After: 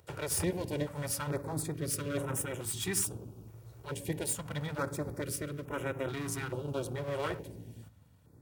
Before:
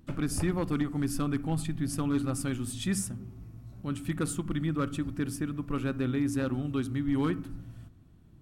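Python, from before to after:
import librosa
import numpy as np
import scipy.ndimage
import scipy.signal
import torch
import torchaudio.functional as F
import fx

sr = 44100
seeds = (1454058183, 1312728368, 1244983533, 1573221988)

y = fx.lower_of_two(x, sr, delay_ms=2.1)
y = scipy.signal.sosfilt(scipy.signal.butter(4, 74.0, 'highpass', fs=sr, output='sos'), y)
y = fx.high_shelf(y, sr, hz=5400.0, db=7.0)
y = fx.filter_held_notch(y, sr, hz=2.3, low_hz=240.0, high_hz=4500.0)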